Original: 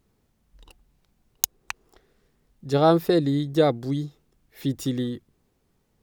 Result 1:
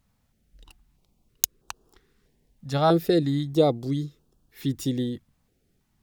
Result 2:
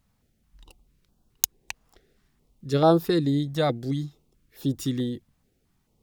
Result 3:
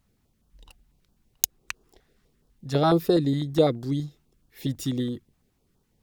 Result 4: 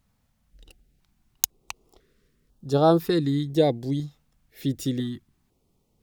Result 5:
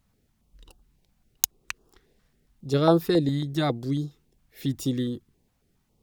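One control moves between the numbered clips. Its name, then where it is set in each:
notch on a step sequencer, speed: 3.1, 4.6, 12, 2, 7.3 Hertz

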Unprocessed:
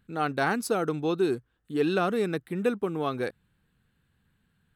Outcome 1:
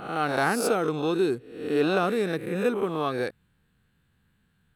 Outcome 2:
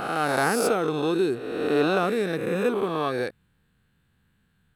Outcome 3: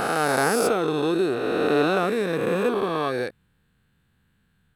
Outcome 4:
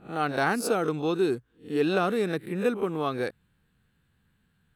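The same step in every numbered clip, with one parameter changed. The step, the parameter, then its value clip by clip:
peak hold with a rise ahead of every peak, rising 60 dB in: 0.73, 1.53, 3.2, 0.31 seconds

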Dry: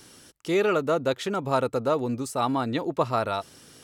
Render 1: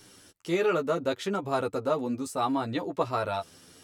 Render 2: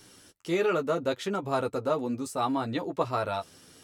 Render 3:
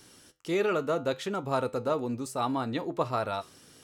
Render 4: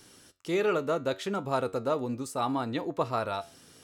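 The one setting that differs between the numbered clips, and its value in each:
flanger, regen: +7, −21, −77, +79%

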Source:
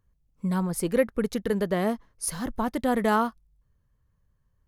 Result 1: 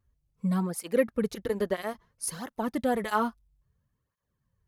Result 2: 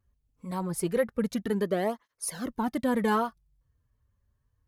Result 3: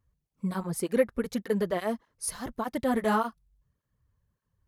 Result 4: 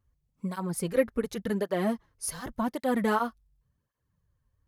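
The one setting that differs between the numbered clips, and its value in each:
through-zero flanger with one copy inverted, nulls at: 0.6, 0.24, 1.7, 0.89 Hertz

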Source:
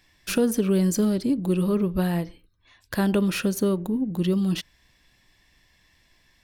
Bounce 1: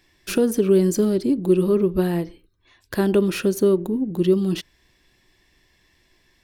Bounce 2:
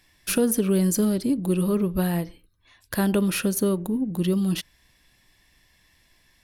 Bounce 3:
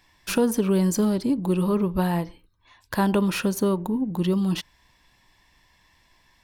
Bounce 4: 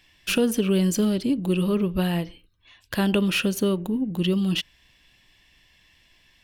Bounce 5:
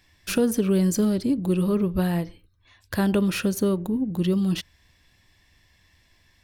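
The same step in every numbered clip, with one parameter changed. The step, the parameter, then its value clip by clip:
parametric band, centre frequency: 370, 11,000, 940, 2,900, 87 Hertz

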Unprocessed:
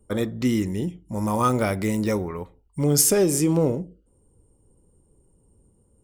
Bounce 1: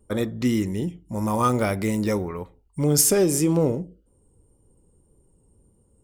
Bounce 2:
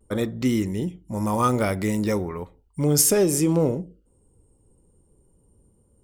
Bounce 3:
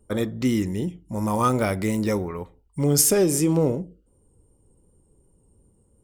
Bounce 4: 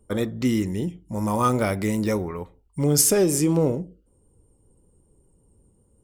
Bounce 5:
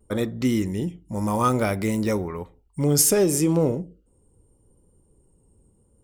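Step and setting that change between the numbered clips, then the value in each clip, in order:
pitch vibrato, speed: 1.8, 0.4, 2.7, 5.2, 0.68 Hertz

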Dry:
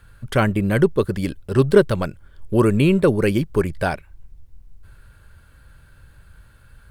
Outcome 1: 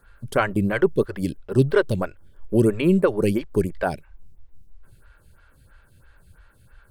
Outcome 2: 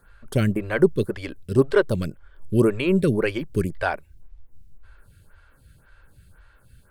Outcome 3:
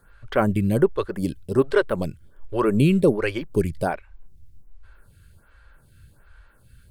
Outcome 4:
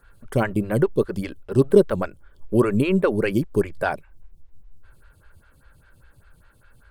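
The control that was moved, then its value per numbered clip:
phaser with staggered stages, speed: 3, 1.9, 1.3, 5 Hertz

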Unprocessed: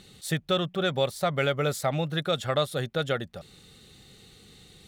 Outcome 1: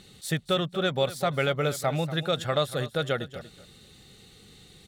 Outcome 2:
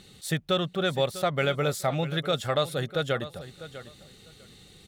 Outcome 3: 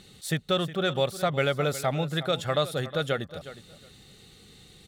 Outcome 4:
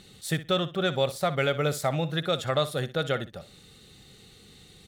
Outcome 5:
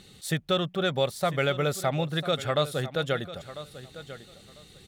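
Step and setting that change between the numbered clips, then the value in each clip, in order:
repeating echo, delay time: 238, 649, 363, 61, 997 milliseconds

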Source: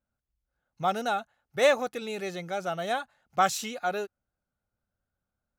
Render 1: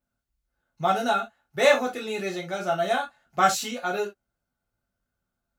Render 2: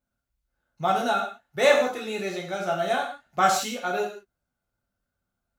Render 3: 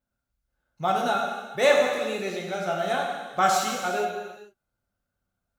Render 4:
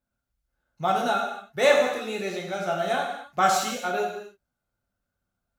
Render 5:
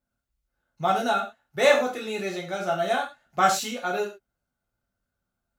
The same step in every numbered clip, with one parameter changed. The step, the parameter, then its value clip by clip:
reverb whose tail is shaped and stops, gate: 90, 200, 490, 320, 140 milliseconds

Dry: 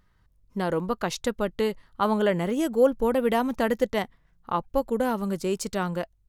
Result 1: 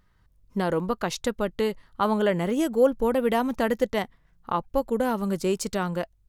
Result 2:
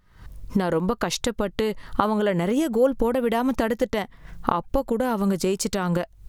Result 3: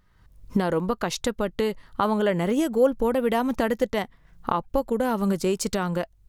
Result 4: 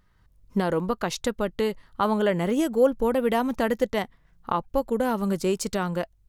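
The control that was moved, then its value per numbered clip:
camcorder AGC, rising by: 5.4, 87, 34, 13 dB per second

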